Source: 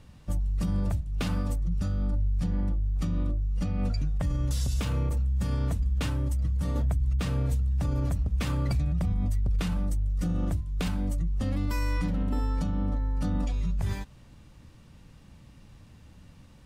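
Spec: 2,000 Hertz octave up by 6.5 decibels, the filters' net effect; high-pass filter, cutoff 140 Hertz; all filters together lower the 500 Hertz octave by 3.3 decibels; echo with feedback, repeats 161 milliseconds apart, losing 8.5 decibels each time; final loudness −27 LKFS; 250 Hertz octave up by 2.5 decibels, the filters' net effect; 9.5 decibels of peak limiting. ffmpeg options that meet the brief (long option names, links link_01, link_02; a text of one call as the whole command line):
ffmpeg -i in.wav -af "highpass=140,equalizer=frequency=250:width_type=o:gain=6,equalizer=frequency=500:width_type=o:gain=-6,equalizer=frequency=2000:width_type=o:gain=8.5,alimiter=level_in=1dB:limit=-24dB:level=0:latency=1,volume=-1dB,aecho=1:1:161|322|483|644:0.376|0.143|0.0543|0.0206,volume=7.5dB" out.wav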